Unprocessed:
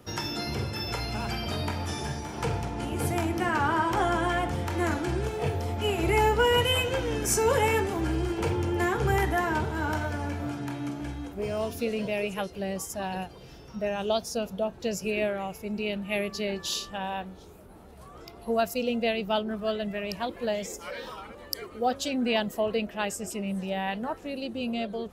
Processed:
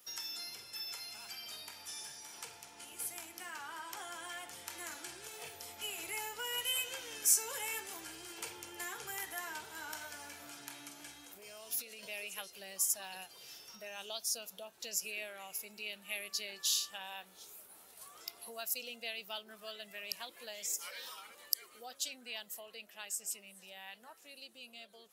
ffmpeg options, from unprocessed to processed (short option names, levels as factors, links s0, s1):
-filter_complex "[0:a]asettb=1/sr,asplit=3[s0][s1][s2];[s0]atrim=end=11.244[s3];[s1]atrim=start=11.24:end=12.03,asetpts=PTS-STARTPTS,afade=t=in:d=0.004:c=qsin,afade=t=out:st=0.786:d=0.004:c=qsin,acompressor=threshold=0.0178:ratio=6:attack=3.2:release=140:knee=1:detection=peak[s4];[s2]atrim=start=12.026[s5];[s3][s4]acrossfade=d=0.004:c1=hsin:c2=qsin[s6];[s6][s5]acrossfade=d=0.004:c1=qsin:c2=hsin,acompressor=threshold=0.0126:ratio=2,aderivative,dynaudnorm=f=650:g=13:m=2,volume=1.26"